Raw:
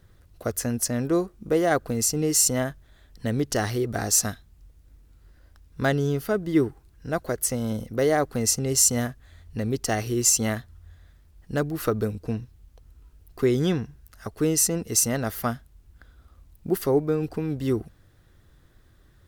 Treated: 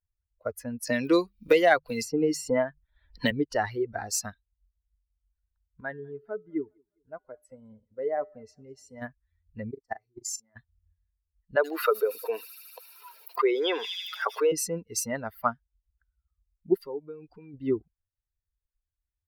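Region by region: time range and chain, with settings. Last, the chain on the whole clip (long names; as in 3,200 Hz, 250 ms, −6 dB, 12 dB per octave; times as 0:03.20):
0:00.87–0:03.31: mains-hum notches 50/100/150/200 Hz + multiband upward and downward compressor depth 100%
0:05.81–0:09.02: high-shelf EQ 4,300 Hz −11 dB + tuned comb filter 86 Hz, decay 0.72 s, harmonics odd + feedback echo with a swinging delay time 204 ms, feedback 59%, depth 109 cents, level −18 dB
0:09.71–0:10.56: parametric band 2,900 Hz −11.5 dB 0.51 octaves + output level in coarse steps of 23 dB + double-tracking delay 40 ms −7.5 dB
0:11.56–0:14.52: high-pass filter 410 Hz 24 dB per octave + delay with a high-pass on its return 77 ms, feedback 82%, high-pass 5,400 Hz, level −4 dB + envelope flattener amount 70%
0:16.74–0:17.54: parametric band 6,400 Hz +6 dB 1.6 octaves + downward compressor 2 to 1, threshold −34 dBFS
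whole clip: spectral dynamics exaggerated over time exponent 2; bass and treble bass −15 dB, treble −15 dB; level +7 dB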